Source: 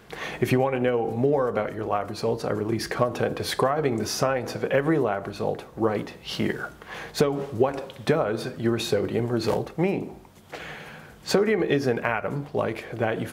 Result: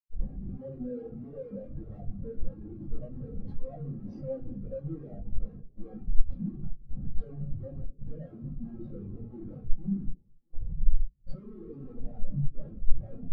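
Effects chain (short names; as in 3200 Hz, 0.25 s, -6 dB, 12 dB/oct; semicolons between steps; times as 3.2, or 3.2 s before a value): rattling part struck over -35 dBFS, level -22 dBFS; LPF 5300 Hz 12 dB/oct; bell 2100 Hz -14.5 dB 1.4 oct; in parallel at 0 dB: compressor 8:1, threshold -38 dBFS, peak gain reduction 21.5 dB; on the sum: short-mantissa float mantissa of 2-bit; Schmitt trigger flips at -30.5 dBFS; on a send: echo with dull and thin repeats by turns 0.218 s, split 950 Hz, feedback 80%, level -13 dB; on the sum: shoebox room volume 430 m³, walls furnished, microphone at 2.2 m; spectral expander 2.5:1; gain +2 dB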